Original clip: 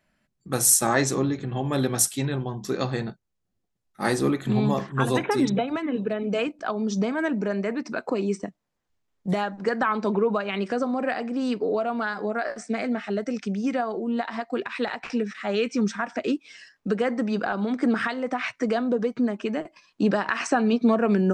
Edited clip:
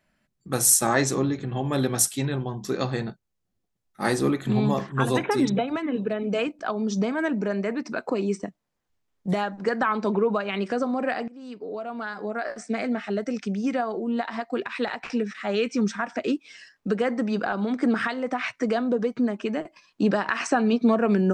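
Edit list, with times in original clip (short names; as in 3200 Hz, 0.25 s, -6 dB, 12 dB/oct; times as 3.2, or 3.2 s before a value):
11.28–12.76 fade in linear, from -20.5 dB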